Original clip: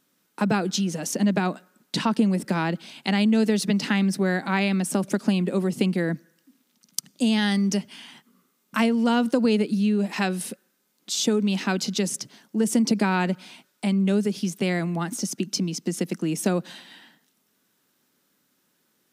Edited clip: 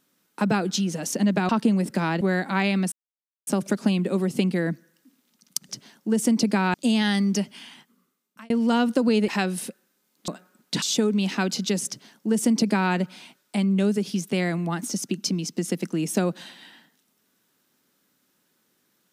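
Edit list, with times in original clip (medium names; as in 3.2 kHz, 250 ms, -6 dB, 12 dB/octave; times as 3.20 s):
1.49–2.03 s: move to 11.11 s
2.75–4.18 s: delete
4.89 s: insert silence 0.55 s
8.00–8.87 s: fade out
9.65–10.11 s: delete
12.17–13.22 s: copy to 7.11 s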